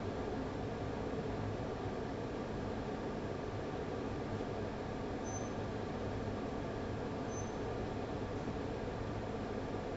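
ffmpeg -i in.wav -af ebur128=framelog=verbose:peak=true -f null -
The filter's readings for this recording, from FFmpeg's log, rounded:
Integrated loudness:
  I:         -41.1 LUFS
  Threshold: -51.1 LUFS
Loudness range:
  LRA:         0.3 LU
  Threshold: -61.1 LUFS
  LRA low:   -41.2 LUFS
  LRA high:  -41.0 LUFS
True peak:
  Peak:      -27.0 dBFS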